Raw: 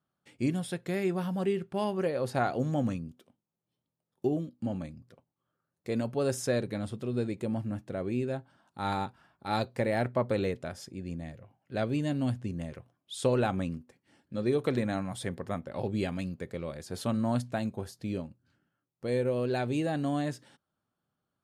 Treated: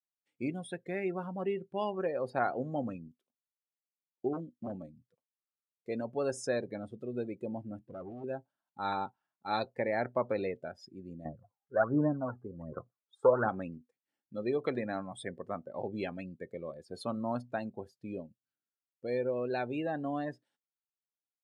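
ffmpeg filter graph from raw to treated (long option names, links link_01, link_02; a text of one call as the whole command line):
ffmpeg -i in.wav -filter_complex "[0:a]asettb=1/sr,asplit=3[link_01][link_02][link_03];[link_01]atrim=end=4.334[link_04];[link_02]atrim=start=4.33:end=4.76,asetpts=PTS-STARTPTS,afade=type=in:duration=0.004:curve=qsin,afade=type=out:start_time=0.426:duration=0.004:curve=qsin,lowshelf=frequency=120:gain=5,aeval=exprs='0.0473*(abs(mod(val(0)/0.0473+3,4)-2)-1)':channel_layout=same[link_05];[link_03]atrim=start=4.756[link_06];[link_04][link_05]acrossfade=duration=0.004:curve1=hsin:curve2=qsin[link_07];[link_07][link_06]acrossfade=duration=0.004:curve1=qsin:curve2=hsin,asettb=1/sr,asplit=3[link_08][link_09][link_10];[link_08]atrim=end=7.794[link_11];[link_09]atrim=start=7.79:end=8.24,asetpts=PTS-STARTPTS,afade=type=in:duration=0.004:curve=qsin,afade=type=out:start_time=0.446:duration=0.004:curve=qsin,lowpass=3100,lowshelf=frequency=130:gain=9.5,aeval=exprs='(tanh(56.2*val(0)+0.35)-tanh(0.35))/56.2':channel_layout=same[link_12];[link_10]atrim=start=8.236[link_13];[link_11][link_12]acrossfade=duration=0.004:curve1=hsin:curve2=qsin[link_14];[link_14][link_13]acrossfade=duration=0.004:curve1=qsin:curve2=hsin,asettb=1/sr,asplit=3[link_15][link_16][link_17];[link_15]atrim=end=11.254[link_18];[link_16]atrim=start=11.25:end=13.49,asetpts=PTS-STARTPTS,afade=type=in:duration=0.004:curve=qsin,afade=type=out:start_time=2.236:duration=0.004:curve=qsin,highshelf=frequency=1900:width_type=q:width=3:gain=-14,aphaser=in_gain=1:out_gain=1:delay=2.5:decay=0.67:speed=1.3:type=sinusoidal[link_19];[link_17]atrim=start=13.486[link_20];[link_18][link_19]acrossfade=duration=0.004:curve1=hsin:curve2=qsin[link_21];[link_21][link_20]acrossfade=duration=0.004:curve1=qsin:curve2=hsin,afftdn=noise_reduction=24:noise_floor=-40,highpass=frequency=460:poles=1,adynamicequalizer=threshold=0.00224:dfrequency=3300:dqfactor=0.7:tfrequency=3300:tqfactor=0.7:attack=5:release=100:ratio=0.375:range=2.5:mode=cutabove:tftype=highshelf" out.wav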